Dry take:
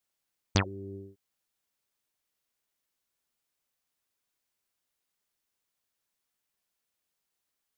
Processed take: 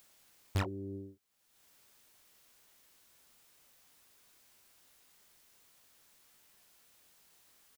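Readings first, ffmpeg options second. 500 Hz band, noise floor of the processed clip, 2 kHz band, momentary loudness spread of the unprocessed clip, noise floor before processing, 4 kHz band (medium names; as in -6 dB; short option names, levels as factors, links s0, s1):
-4.5 dB, -70 dBFS, -7.5 dB, 17 LU, -84 dBFS, -10.5 dB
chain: -filter_complex "[0:a]acompressor=mode=upward:threshold=0.00316:ratio=2.5,asoftclip=type=hard:threshold=0.0473,asplit=2[s0][s1];[s1]adelay=24,volume=0.335[s2];[s0][s2]amix=inputs=2:normalize=0"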